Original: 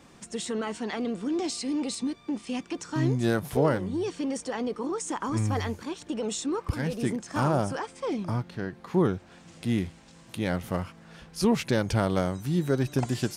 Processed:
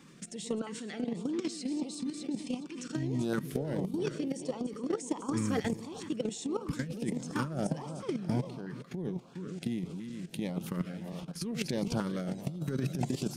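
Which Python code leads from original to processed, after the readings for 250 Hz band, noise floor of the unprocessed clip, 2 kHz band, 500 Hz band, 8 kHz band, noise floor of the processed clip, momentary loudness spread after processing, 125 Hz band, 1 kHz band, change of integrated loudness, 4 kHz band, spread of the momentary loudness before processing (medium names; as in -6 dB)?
-5.0 dB, -53 dBFS, -8.5 dB, -7.5 dB, -6.0 dB, -49 dBFS, 6 LU, -7.0 dB, -10.0 dB, -6.5 dB, -6.0 dB, 9 LU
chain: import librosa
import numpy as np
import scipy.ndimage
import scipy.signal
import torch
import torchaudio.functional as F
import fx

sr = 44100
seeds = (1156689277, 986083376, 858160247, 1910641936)

y = fx.reverse_delay_fb(x, sr, ms=206, feedback_pct=59, wet_db=-11.5)
y = fx.filter_lfo_notch(y, sr, shape='saw_up', hz=1.5, low_hz=620.0, high_hz=2100.0, q=1.2)
y = fx.level_steps(y, sr, step_db=15)
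y = fx.low_shelf_res(y, sr, hz=120.0, db=-7.5, q=3.0)
y = fx.over_compress(y, sr, threshold_db=-31.0, ratio=-0.5)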